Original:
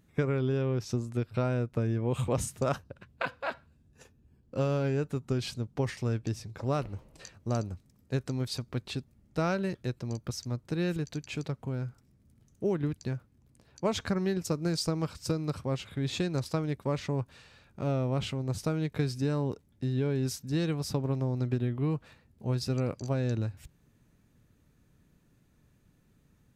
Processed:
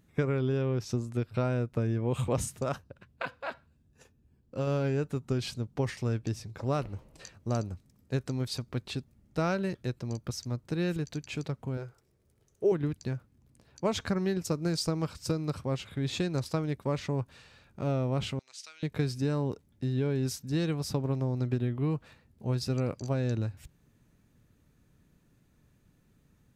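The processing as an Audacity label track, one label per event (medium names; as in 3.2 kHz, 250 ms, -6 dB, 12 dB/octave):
2.590000	4.670000	gain -3 dB
11.770000	12.720000	resonant low shelf 320 Hz -6.5 dB, Q 3
18.390000	18.830000	Butterworth band-pass 4.2 kHz, Q 0.77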